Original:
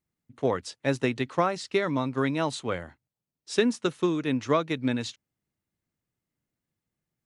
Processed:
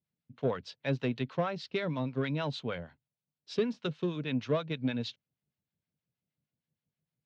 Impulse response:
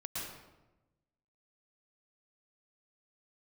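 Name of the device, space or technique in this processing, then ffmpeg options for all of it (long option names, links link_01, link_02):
guitar amplifier with harmonic tremolo: -filter_complex "[0:a]acrossover=split=760[link_01][link_02];[link_01]aeval=exprs='val(0)*(1-0.7/2+0.7/2*cos(2*PI*6.4*n/s))':channel_layout=same[link_03];[link_02]aeval=exprs='val(0)*(1-0.7/2-0.7/2*cos(2*PI*6.4*n/s))':channel_layout=same[link_04];[link_03][link_04]amix=inputs=2:normalize=0,asoftclip=type=tanh:threshold=-18dB,highpass=83,equalizer=frequency=150:width_type=q:width=4:gain=5,equalizer=frequency=330:width_type=q:width=4:gain=-8,equalizer=frequency=830:width_type=q:width=4:gain=-4,equalizer=frequency=1200:width_type=q:width=4:gain=-7,equalizer=frequency=1900:width_type=q:width=4:gain=-6,lowpass=frequency=4400:width=0.5412,lowpass=frequency=4400:width=1.3066"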